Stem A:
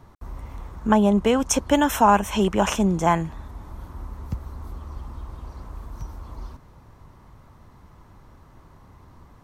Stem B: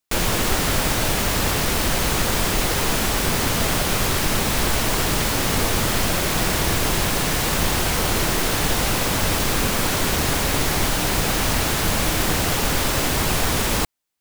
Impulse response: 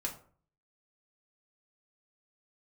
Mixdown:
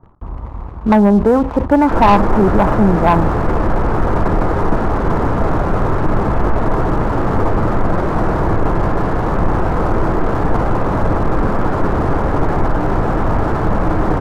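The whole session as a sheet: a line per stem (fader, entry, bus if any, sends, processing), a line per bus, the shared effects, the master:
+1.0 dB, 0.00 s, send -16.5 dB, none
-2.0 dB, 1.80 s, send -9.5 dB, none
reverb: on, RT60 0.45 s, pre-delay 3 ms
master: low-pass 1.3 kHz 24 dB/octave; waveshaping leveller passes 2; decay stretcher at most 130 dB/s

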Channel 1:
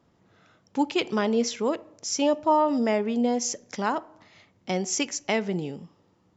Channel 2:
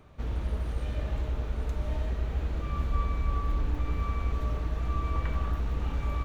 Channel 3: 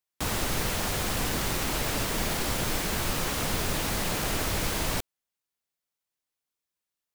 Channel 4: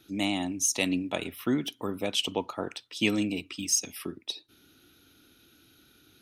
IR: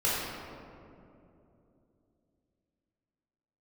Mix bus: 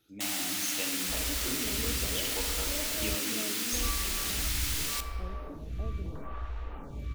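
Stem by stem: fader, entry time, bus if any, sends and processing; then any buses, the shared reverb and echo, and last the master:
-18.5 dB, 0.50 s, no send, steep low-pass 680 Hz
-3.5 dB, 0.90 s, muted 3.15–3.72 s, no send, lamp-driven phase shifter 0.76 Hz
0.0 dB, 0.00 s, send -19 dB, Bessel high-pass 2.7 kHz, order 2
-13.5 dB, 0.00 s, send -10.5 dB, none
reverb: on, RT60 2.8 s, pre-delay 4 ms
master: none

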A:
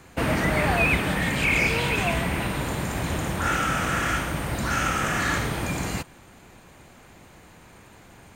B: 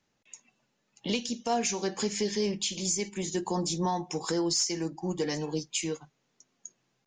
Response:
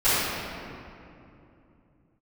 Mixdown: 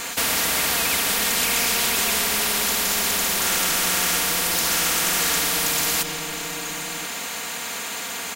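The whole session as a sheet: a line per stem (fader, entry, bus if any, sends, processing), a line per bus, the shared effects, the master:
-1.0 dB, 0.00 s, no send, high-pass 1.1 kHz 6 dB/octave; treble shelf 2.5 kHz +7.5 dB
-14.5 dB, 0.00 s, send -10.5 dB, none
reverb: on, RT60 2.8 s, pre-delay 3 ms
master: comb 4.3 ms, depth 80%; spectrum-flattening compressor 4:1

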